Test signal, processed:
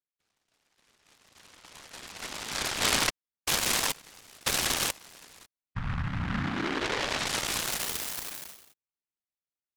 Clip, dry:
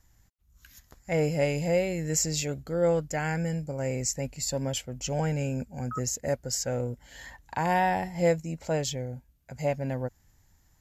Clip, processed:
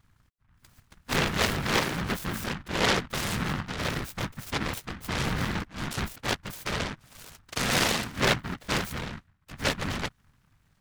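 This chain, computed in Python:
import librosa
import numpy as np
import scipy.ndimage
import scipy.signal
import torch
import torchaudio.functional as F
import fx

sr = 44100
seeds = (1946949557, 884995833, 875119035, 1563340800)

y = fx.air_absorb(x, sr, metres=170.0)
y = fx.whisperise(y, sr, seeds[0])
y = fx.noise_mod_delay(y, sr, seeds[1], noise_hz=1300.0, depth_ms=0.43)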